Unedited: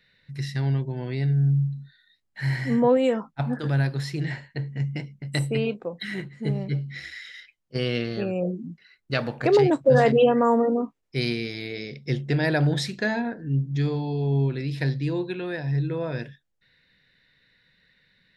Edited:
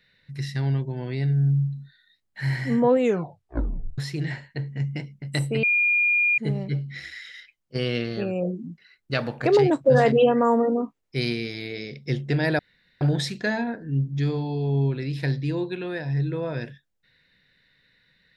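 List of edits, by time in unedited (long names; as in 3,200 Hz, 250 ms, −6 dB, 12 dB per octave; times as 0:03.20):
0:02.98: tape stop 1.00 s
0:05.63–0:06.38: beep over 2,420 Hz −17.5 dBFS
0:12.59: splice in room tone 0.42 s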